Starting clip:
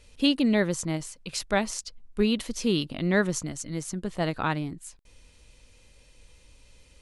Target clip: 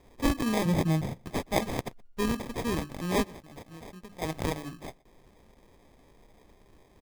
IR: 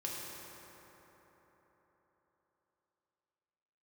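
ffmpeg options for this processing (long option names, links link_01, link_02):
-filter_complex "[0:a]tiltshelf=frequency=1200:gain=-4.5,bandreject=frequency=50:width_type=h:width=6,bandreject=frequency=100:width_type=h:width=6,bandreject=frequency=150:width_type=h:width=6,bandreject=frequency=200:width_type=h:width=6,bandreject=frequency=250:width_type=h:width=6,bandreject=frequency=300:width_type=h:width=6,bandreject=frequency=350:width_type=h:width=6,asplit=3[link_01][link_02][link_03];[link_01]afade=type=out:start_time=3.23:duration=0.02[link_04];[link_02]acompressor=threshold=-40dB:ratio=10,afade=type=in:start_time=3.23:duration=0.02,afade=type=out:start_time=4.21:duration=0.02[link_05];[link_03]afade=type=in:start_time=4.21:duration=0.02[link_06];[link_04][link_05][link_06]amix=inputs=3:normalize=0,acrusher=samples=31:mix=1:aa=0.000001,asettb=1/sr,asplit=3[link_07][link_08][link_09];[link_07]atrim=end=0.654[link_10];[link_08]atrim=start=0.65:end=1.18,asetpts=PTS-STARTPTS,afade=type=in:duration=0.004:curve=qsin,afade=type=out:start_time=0.526:duration=0.004:curve=qsin,equalizer=frequency=150:width_type=o:width=1.6:gain=12.5[link_11];[link_09]atrim=start=1.176[link_12];[link_10][link_11]acrossfade=duration=0.004:curve1=hsin:curve2=qsin[link_13];[link_13][link_12]acrossfade=duration=0.004:curve1=qsin:curve2=hsin,asplit=2[link_14][link_15];[link_15]adelay=122.4,volume=-25dB,highshelf=frequency=4000:gain=-2.76[link_16];[link_14][link_16]amix=inputs=2:normalize=0,volume=-1.5dB"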